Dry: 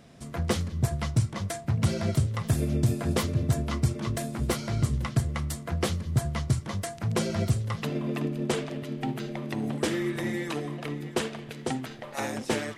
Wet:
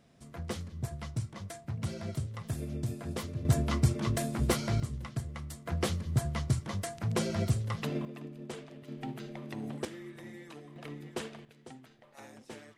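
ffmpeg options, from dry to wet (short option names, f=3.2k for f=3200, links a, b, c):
-af "asetnsamples=n=441:p=0,asendcmd='3.45 volume volume -0.5dB;4.8 volume volume -10.5dB;5.66 volume volume -3.5dB;8.05 volume volume -14.5dB;8.88 volume volume -8.5dB;9.85 volume volume -16.5dB;10.76 volume volume -9.5dB;11.45 volume volume -19dB',volume=-10.5dB"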